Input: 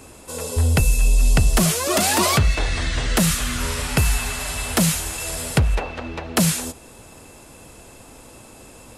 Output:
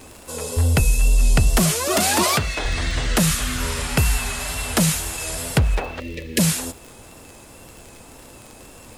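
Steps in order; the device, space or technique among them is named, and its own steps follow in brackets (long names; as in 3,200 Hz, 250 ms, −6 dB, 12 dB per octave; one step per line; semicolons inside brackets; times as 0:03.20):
0:06.00–0:06.39: time-frequency box erased 590–1,700 Hz
vinyl LP (tape wow and flutter; surface crackle 35 per second −29 dBFS; pink noise bed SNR 33 dB)
0:02.23–0:02.65: low-shelf EQ 150 Hz −11 dB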